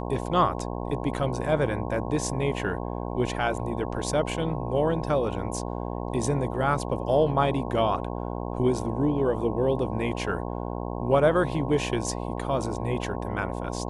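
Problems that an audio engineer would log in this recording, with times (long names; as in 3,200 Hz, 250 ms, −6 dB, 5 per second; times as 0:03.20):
mains buzz 60 Hz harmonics 18 −32 dBFS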